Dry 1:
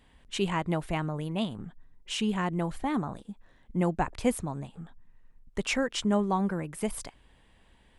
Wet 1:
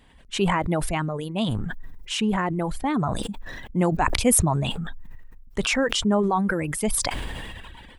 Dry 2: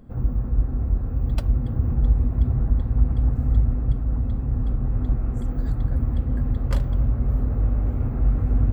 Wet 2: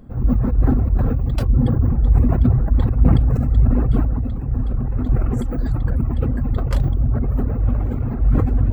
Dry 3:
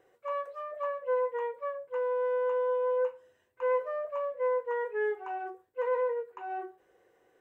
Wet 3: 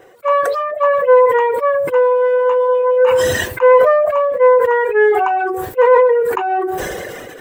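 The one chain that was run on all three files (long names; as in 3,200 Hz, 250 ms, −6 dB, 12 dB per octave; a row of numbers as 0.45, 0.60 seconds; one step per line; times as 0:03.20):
reverb reduction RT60 1.5 s
level that may fall only so fast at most 24 dB per second
normalise the peak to −1.5 dBFS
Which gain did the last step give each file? +5.0, +3.5, +19.5 decibels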